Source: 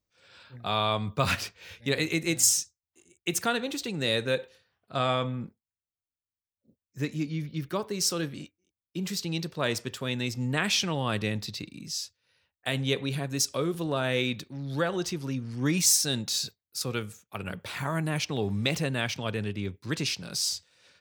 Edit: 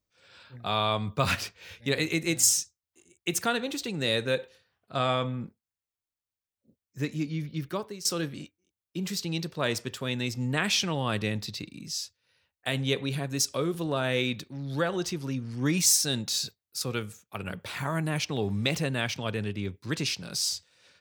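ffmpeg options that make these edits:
ffmpeg -i in.wav -filter_complex "[0:a]asplit=2[link_01][link_02];[link_01]atrim=end=8.05,asetpts=PTS-STARTPTS,afade=type=out:start_time=7.56:duration=0.49:curve=qsin:silence=0.141254[link_03];[link_02]atrim=start=8.05,asetpts=PTS-STARTPTS,afade=type=in:duration=0.004:curve=hsin:silence=0.141254[link_04];[link_03][link_04]concat=n=2:v=0:a=1" out.wav

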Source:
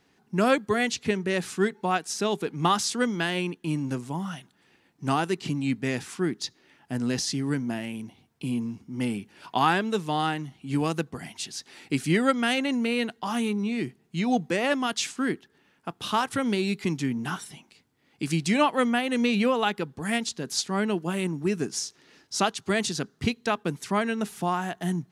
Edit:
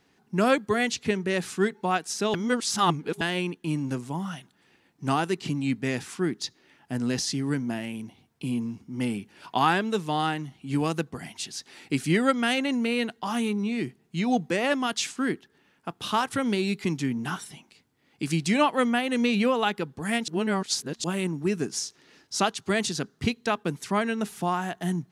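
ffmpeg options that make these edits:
ffmpeg -i in.wav -filter_complex "[0:a]asplit=5[link_01][link_02][link_03][link_04][link_05];[link_01]atrim=end=2.342[link_06];[link_02]atrim=start=2.338:end=3.212,asetpts=PTS-STARTPTS,areverse[link_07];[link_03]atrim=start=3.208:end=20.282[link_08];[link_04]atrim=start=20.278:end=21.042,asetpts=PTS-STARTPTS,areverse[link_09];[link_05]atrim=start=21.038[link_10];[link_06][link_07]acrossfade=duration=0.004:curve1=hsin:curve2=hsin[link_11];[link_11][link_08]acrossfade=duration=0.004:curve1=hsin:curve2=hsin[link_12];[link_12][link_09]acrossfade=duration=0.004:curve1=hsin:curve2=hsin[link_13];[link_13][link_10]acrossfade=duration=0.004:curve1=hsin:curve2=hsin" out.wav

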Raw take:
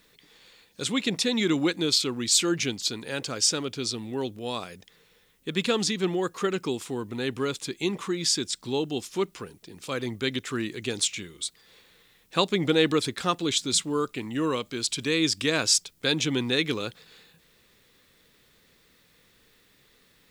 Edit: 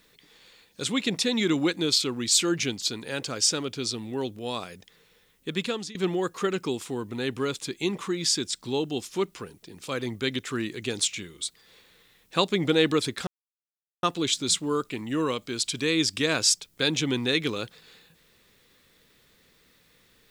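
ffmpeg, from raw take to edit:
ffmpeg -i in.wav -filter_complex "[0:a]asplit=3[link_01][link_02][link_03];[link_01]atrim=end=5.95,asetpts=PTS-STARTPTS,afade=type=out:start_time=5.48:duration=0.47:silence=0.11885[link_04];[link_02]atrim=start=5.95:end=13.27,asetpts=PTS-STARTPTS,afade=type=in:duration=0.004:curve=hsin:silence=0.11885,afade=type=out:start_time=7.316:duration=0.004:curve=hsin,apad=pad_dur=0.76[link_05];[link_03]atrim=start=13.27,asetpts=PTS-STARTPTS,afade=type=in:duration=0.004:curve=hsin[link_06];[link_04][link_05][link_06]concat=n=3:v=0:a=1" out.wav

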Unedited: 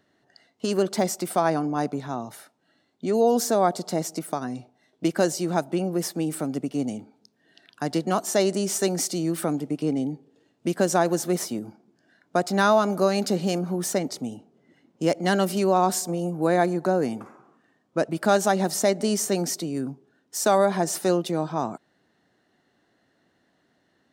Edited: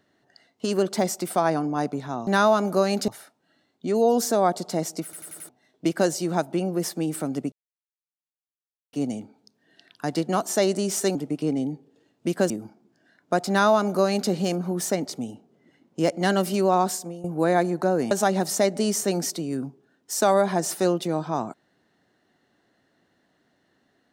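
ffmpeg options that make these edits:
ffmpeg -i in.wav -filter_complex "[0:a]asplit=13[link_01][link_02][link_03][link_04][link_05][link_06][link_07][link_08][link_09][link_10][link_11][link_12][link_13];[link_01]atrim=end=2.272[link_14];[link_02]atrim=start=12.518:end=13.332[link_15];[link_03]atrim=start=2.268:end=4.322[link_16];[link_04]atrim=start=4.228:end=4.322[link_17];[link_05]atrim=start=4.228:end=4.322[link_18];[link_06]atrim=start=4.228:end=4.322[link_19];[link_07]atrim=start=4.228:end=4.322[link_20];[link_08]atrim=start=4.678:end=6.71,asetpts=PTS-STARTPTS,afade=type=out:start_time=2.028:duration=0.004:curve=hsin,apad=pad_dur=1.41[link_21];[link_09]atrim=start=6.71:end=8.932,asetpts=PTS-STARTPTS,afade=type=in:duration=0.004:curve=hsin[link_22];[link_10]atrim=start=9.548:end=10.902[link_23];[link_11]atrim=start=11.528:end=16.27,asetpts=PTS-STARTPTS,afade=type=out:start_time=4.282:duration=0.46:silence=0.177828[link_24];[link_12]atrim=start=16.27:end=17.142,asetpts=PTS-STARTPTS,afade=type=in:duration=0.004:curve=hsin:silence=0.177828[link_25];[link_13]atrim=start=18.348[link_26];[link_14][link_15]acrossfade=duration=0.004:curve1=hsin:curve2=hsin[link_27];[link_27][link_16]acrossfade=duration=0.004:curve1=hsin:curve2=hsin[link_28];[link_28][link_17]acrossfade=duration=0.004:curve1=hsin:curve2=hsin[link_29];[link_29][link_18]acrossfade=duration=0.004:curve1=hsin:curve2=hsin[link_30];[link_30][link_19]acrossfade=duration=0.004:curve1=hsin:curve2=hsin[link_31];[link_31][link_20]acrossfade=duration=0.004:curve1=hsin:curve2=hsin[link_32];[link_21][link_22]concat=n=2:v=0:a=1[link_33];[link_32][link_33]acrossfade=duration=0.004:curve1=hsin:curve2=hsin[link_34];[link_34][link_23]acrossfade=duration=0.004:curve1=hsin:curve2=hsin[link_35];[link_24][link_25]concat=n=2:v=0:a=1[link_36];[link_35][link_36]acrossfade=duration=0.004:curve1=hsin:curve2=hsin[link_37];[link_37][link_26]acrossfade=duration=0.004:curve1=hsin:curve2=hsin" out.wav

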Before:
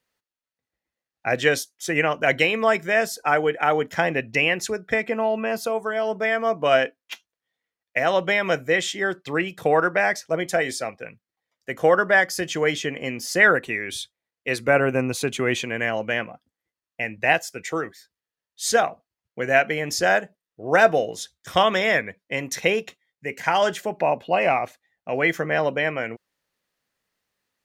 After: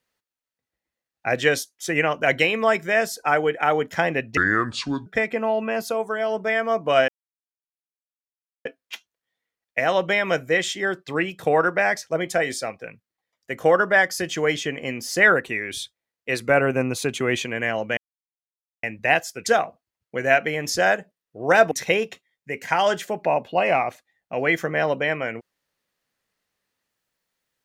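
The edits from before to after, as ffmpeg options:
ffmpeg -i in.wav -filter_complex "[0:a]asplit=8[link_01][link_02][link_03][link_04][link_05][link_06][link_07][link_08];[link_01]atrim=end=4.374[link_09];[link_02]atrim=start=4.37:end=4.82,asetpts=PTS-STARTPTS,asetrate=28665,aresample=44100[link_10];[link_03]atrim=start=4.816:end=6.84,asetpts=PTS-STARTPTS,afade=type=out:start_time=2.02:duration=0.004:curve=hsin,apad=pad_dur=1.57[link_11];[link_04]atrim=start=6.84:end=16.16,asetpts=PTS-STARTPTS,afade=type=in:duration=0.004:curve=hsin,afade=type=out:start_time=9.316:duration=0.004:curve=hsin[link_12];[link_05]atrim=start=16.16:end=17.02,asetpts=PTS-STARTPTS,volume=0[link_13];[link_06]atrim=start=17.02:end=17.652,asetpts=PTS-STARTPTS,afade=type=in:duration=0.004:curve=hsin[link_14];[link_07]atrim=start=18.698:end=20.952[link_15];[link_08]atrim=start=22.468[link_16];[link_09][link_10]acrossfade=duration=0.004:curve1=hsin:curve2=hsin[link_17];[link_11][link_12][link_13][link_14]concat=n=4:v=0:a=1[link_18];[link_17][link_18]acrossfade=duration=0.004:curve1=hsin:curve2=hsin[link_19];[link_19][link_15]acrossfade=duration=0.004:curve1=hsin:curve2=hsin[link_20];[link_20][link_16]acrossfade=duration=0.004:curve1=hsin:curve2=hsin" out.wav

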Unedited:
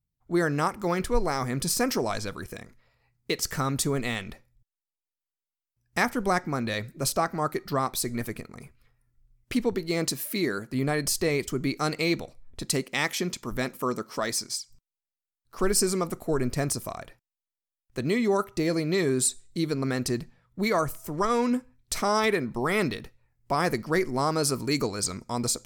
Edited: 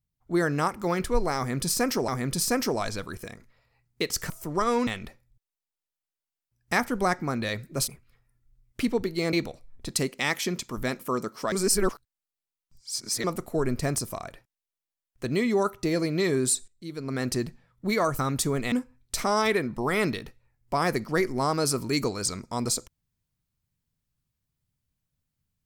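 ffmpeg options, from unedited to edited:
ffmpeg -i in.wav -filter_complex "[0:a]asplit=11[link_01][link_02][link_03][link_04][link_05][link_06][link_07][link_08][link_09][link_10][link_11];[link_01]atrim=end=2.082[link_12];[link_02]atrim=start=1.368:end=3.592[link_13];[link_03]atrim=start=20.928:end=21.502[link_14];[link_04]atrim=start=4.118:end=7.132[link_15];[link_05]atrim=start=8.598:end=10.052[link_16];[link_06]atrim=start=12.068:end=14.262[link_17];[link_07]atrim=start=14.258:end=15.982,asetpts=PTS-STARTPTS,areverse[link_18];[link_08]atrim=start=15.978:end=19.42,asetpts=PTS-STARTPTS,afade=type=out:start_time=3.438:duration=0.004:curve=hsin:silence=0.188365[link_19];[link_09]atrim=start=19.42:end=20.932,asetpts=PTS-STARTPTS,afade=type=in:duration=0.56:curve=qua:silence=0.188365[link_20];[link_10]atrim=start=3.588:end=4.122[link_21];[link_11]atrim=start=21.498[link_22];[link_12][link_13]acrossfade=duration=0.004:curve1=hsin:curve2=hsin[link_23];[link_23][link_14]acrossfade=duration=0.004:curve1=hsin:curve2=hsin[link_24];[link_24][link_15]acrossfade=duration=0.004:curve1=hsin:curve2=hsin[link_25];[link_25][link_16]acrossfade=duration=0.004:curve1=hsin:curve2=hsin[link_26];[link_26][link_17]acrossfade=duration=0.004:curve1=hsin:curve2=hsin[link_27];[link_27][link_18]acrossfade=duration=0.004:curve1=hsin:curve2=hsin[link_28];[link_19][link_20]concat=n=2:v=0:a=1[link_29];[link_28][link_29]acrossfade=duration=0.004:curve1=hsin:curve2=hsin[link_30];[link_30][link_21]acrossfade=duration=0.004:curve1=hsin:curve2=hsin[link_31];[link_31][link_22]acrossfade=duration=0.004:curve1=hsin:curve2=hsin" out.wav

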